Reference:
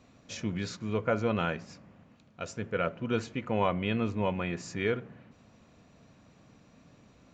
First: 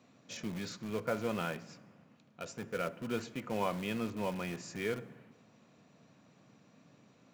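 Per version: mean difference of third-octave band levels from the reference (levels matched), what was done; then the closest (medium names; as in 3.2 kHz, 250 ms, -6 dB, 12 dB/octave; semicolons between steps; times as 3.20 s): 5.0 dB: high-pass 120 Hz 24 dB/octave; in parallel at -10 dB: integer overflow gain 31 dB; on the sum: plate-style reverb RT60 1.3 s, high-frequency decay 0.95×, DRR 19 dB; trim -6 dB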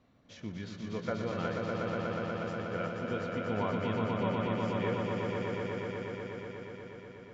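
10.0 dB: low-pass 4 kHz 12 dB/octave; band-stop 2.5 kHz, Q 11; on a send: echo with a slow build-up 121 ms, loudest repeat 5, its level -4 dB; on the sum: trim -7.5 dB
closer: first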